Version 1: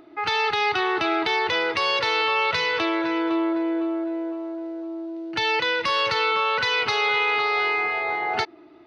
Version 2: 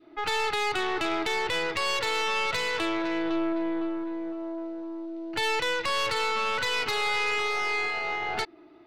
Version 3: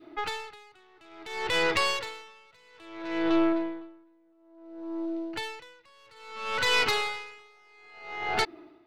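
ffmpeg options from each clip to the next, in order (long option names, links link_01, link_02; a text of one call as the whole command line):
ffmpeg -i in.wav -af "adynamicequalizer=threshold=0.0251:dfrequency=800:dqfactor=0.75:tfrequency=800:tqfactor=0.75:attack=5:release=100:ratio=0.375:range=1.5:mode=cutabove:tftype=bell,aeval=exprs='(tanh(12.6*val(0)+0.65)-tanh(0.65))/12.6':channel_layout=same" out.wav
ffmpeg -i in.wav -af "areverse,acompressor=mode=upward:threshold=-48dB:ratio=2.5,areverse,aeval=exprs='val(0)*pow(10,-35*(0.5-0.5*cos(2*PI*0.59*n/s))/20)':channel_layout=same,volume=4.5dB" out.wav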